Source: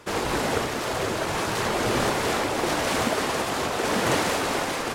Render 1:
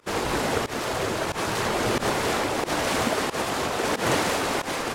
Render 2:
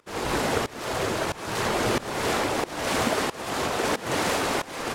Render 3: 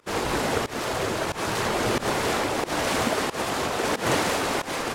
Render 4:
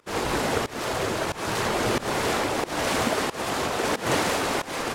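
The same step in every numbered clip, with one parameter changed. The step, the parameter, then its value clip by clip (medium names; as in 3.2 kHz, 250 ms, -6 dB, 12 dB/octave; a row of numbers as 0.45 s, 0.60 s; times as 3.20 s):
volume shaper, release: 104 ms, 407 ms, 154 ms, 227 ms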